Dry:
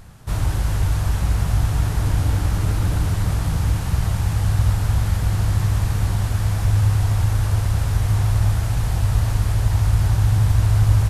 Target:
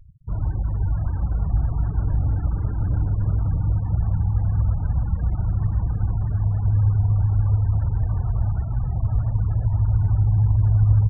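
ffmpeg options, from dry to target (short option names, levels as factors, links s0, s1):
-filter_complex "[0:a]asplit=2[s0][s1];[s1]adelay=641,lowpass=f=1800:p=1,volume=0.562,asplit=2[s2][s3];[s3]adelay=641,lowpass=f=1800:p=1,volume=0.18,asplit=2[s4][s5];[s5]adelay=641,lowpass=f=1800:p=1,volume=0.18[s6];[s0][s2][s4][s6]amix=inputs=4:normalize=0,afftfilt=real='re*gte(hypot(re,im),0.0562)':imag='im*gte(hypot(re,im),0.0562)':win_size=1024:overlap=0.75,acrossover=split=190|3000[s7][s8][s9];[s8]acompressor=threshold=0.0126:ratio=2[s10];[s7][s10][s9]amix=inputs=3:normalize=0,volume=0.708"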